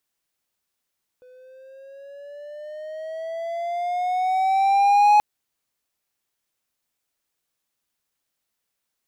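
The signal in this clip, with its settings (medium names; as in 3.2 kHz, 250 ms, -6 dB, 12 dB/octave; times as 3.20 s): gliding synth tone triangle, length 3.98 s, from 500 Hz, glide +9 st, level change +35 dB, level -9 dB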